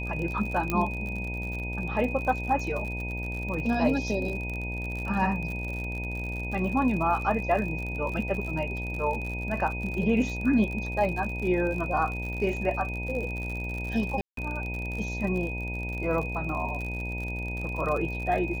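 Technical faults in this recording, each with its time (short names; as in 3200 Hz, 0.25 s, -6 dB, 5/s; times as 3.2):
buzz 60 Hz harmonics 16 -34 dBFS
crackle 56/s -33 dBFS
tone 2500 Hz -35 dBFS
0.7 pop -13 dBFS
14.21–14.37 gap 0.163 s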